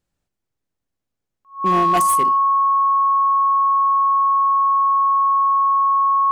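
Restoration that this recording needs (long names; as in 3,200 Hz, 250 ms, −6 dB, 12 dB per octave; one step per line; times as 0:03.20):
clipped peaks rebuilt −11.5 dBFS
notch filter 1,100 Hz, Q 30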